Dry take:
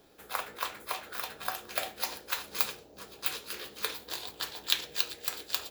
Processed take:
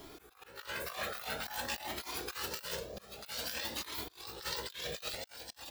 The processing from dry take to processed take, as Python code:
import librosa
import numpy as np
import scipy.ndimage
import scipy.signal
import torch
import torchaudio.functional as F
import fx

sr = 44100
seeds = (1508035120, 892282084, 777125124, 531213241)

y = fx.pitch_trill(x, sr, semitones=2.0, every_ms=468)
y = fx.over_compress(y, sr, threshold_db=-46.0, ratio=-1.0)
y = fx.auto_swell(y, sr, attack_ms=387.0)
y = fx.comb_cascade(y, sr, direction='rising', hz=0.51)
y = y * librosa.db_to_amplitude(8.0)